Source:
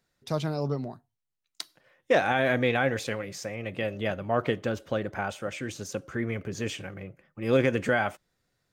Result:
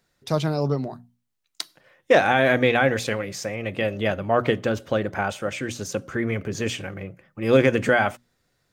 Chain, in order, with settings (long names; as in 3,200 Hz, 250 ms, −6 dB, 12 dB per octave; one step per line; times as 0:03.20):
mains-hum notches 60/120/180/240 Hz
level +6 dB